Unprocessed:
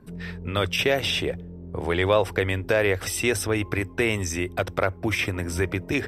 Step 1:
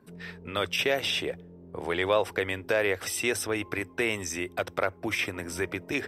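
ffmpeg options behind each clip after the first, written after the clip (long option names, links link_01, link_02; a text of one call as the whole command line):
ffmpeg -i in.wav -af "highpass=frequency=300:poles=1,volume=-3dB" out.wav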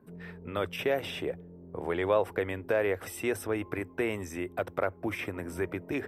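ffmpeg -i in.wav -af "equalizer=frequency=5100:width_type=o:width=2.3:gain=-15" out.wav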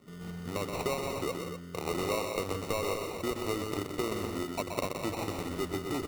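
ffmpeg -i in.wav -filter_complex "[0:a]acompressor=threshold=-29dB:ratio=6,acrusher=samples=27:mix=1:aa=0.000001,asplit=2[link_01][link_02];[link_02]aecho=0:1:125.4|172|247.8:0.501|0.355|0.355[link_03];[link_01][link_03]amix=inputs=2:normalize=0" out.wav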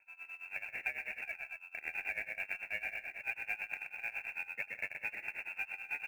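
ffmpeg -i in.wav -af "lowpass=frequency=2400:width_type=q:width=0.5098,lowpass=frequency=2400:width_type=q:width=0.6013,lowpass=frequency=2400:width_type=q:width=0.9,lowpass=frequency=2400:width_type=q:width=2.563,afreqshift=-2800,tremolo=f=9.1:d=0.88,acrusher=bits=6:mode=log:mix=0:aa=0.000001,volume=-4dB" out.wav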